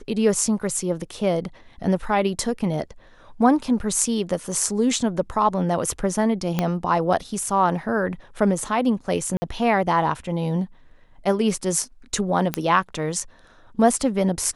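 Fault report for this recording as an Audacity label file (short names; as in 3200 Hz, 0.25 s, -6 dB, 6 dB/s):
6.590000	6.590000	pop -8 dBFS
9.370000	9.420000	gap 50 ms
12.540000	12.540000	pop -7 dBFS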